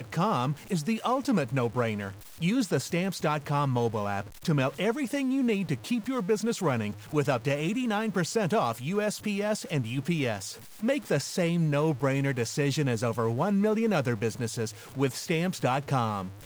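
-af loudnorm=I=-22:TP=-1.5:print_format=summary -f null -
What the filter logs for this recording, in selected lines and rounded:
Input Integrated:    -28.7 LUFS
Input True Peak:     -13.5 dBTP
Input LRA:             0.8 LU
Input Threshold:     -38.7 LUFS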